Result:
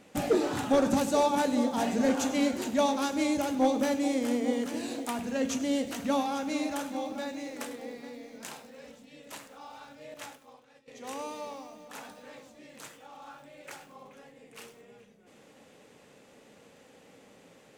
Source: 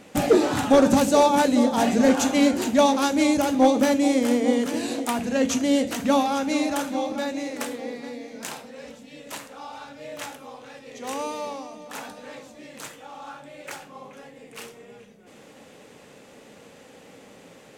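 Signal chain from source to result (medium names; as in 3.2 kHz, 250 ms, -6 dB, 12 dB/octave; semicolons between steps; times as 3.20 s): 10.14–10.88 s: expander -35 dBFS; bit-crushed delay 100 ms, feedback 55%, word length 7-bit, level -15 dB; trim -8 dB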